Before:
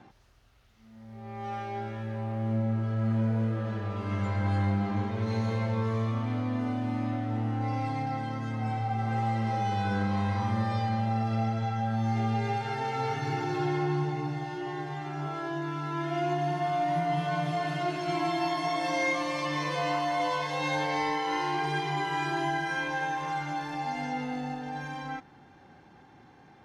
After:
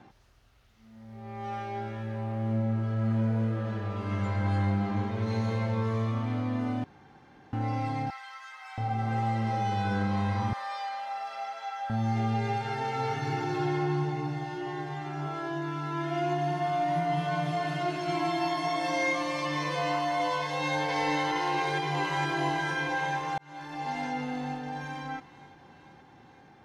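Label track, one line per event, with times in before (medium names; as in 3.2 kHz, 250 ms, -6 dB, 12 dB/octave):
6.840000	7.530000	room tone
8.100000	8.780000	high-pass 1.1 kHz 24 dB/octave
10.530000	11.900000	high-pass 720 Hz 24 dB/octave
20.410000	20.840000	echo throw 470 ms, feedback 70%, level -2.5 dB
21.480000	22.270000	echo throw 460 ms, feedback 65%, level -6.5 dB
23.380000	23.930000	fade in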